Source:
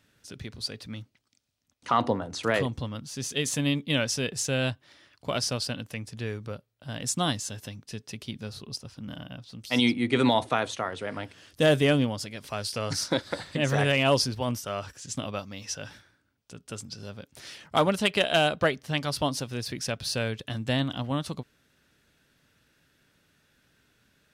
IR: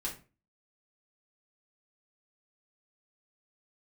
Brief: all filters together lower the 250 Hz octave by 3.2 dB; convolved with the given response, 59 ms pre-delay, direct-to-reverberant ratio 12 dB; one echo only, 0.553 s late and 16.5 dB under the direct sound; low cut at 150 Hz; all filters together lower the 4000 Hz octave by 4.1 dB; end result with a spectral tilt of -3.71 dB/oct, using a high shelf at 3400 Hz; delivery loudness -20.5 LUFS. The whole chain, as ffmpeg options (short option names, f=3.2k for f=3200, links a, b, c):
-filter_complex "[0:a]highpass=150,equalizer=f=250:t=o:g=-3,highshelf=f=3.4k:g=3.5,equalizer=f=4k:t=o:g=-8.5,aecho=1:1:553:0.15,asplit=2[a][b];[1:a]atrim=start_sample=2205,adelay=59[c];[b][c]afir=irnorm=-1:irlink=0,volume=-13.5dB[d];[a][d]amix=inputs=2:normalize=0,volume=9dB"